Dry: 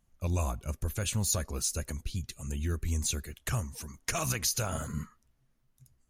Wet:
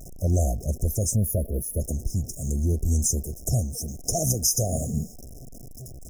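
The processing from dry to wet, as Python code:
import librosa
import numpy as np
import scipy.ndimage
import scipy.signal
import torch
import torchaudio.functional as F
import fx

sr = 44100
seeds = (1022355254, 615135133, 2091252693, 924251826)

y = x + 0.5 * 10.0 ** (-42.5 / 20.0) * np.sign(x)
y = fx.spec_box(y, sr, start_s=1.15, length_s=0.66, low_hz=700.0, high_hz=9900.0, gain_db=-26)
y = fx.brickwall_bandstop(y, sr, low_hz=770.0, high_hz=5000.0)
y = F.gain(torch.from_numpy(y), 7.5).numpy()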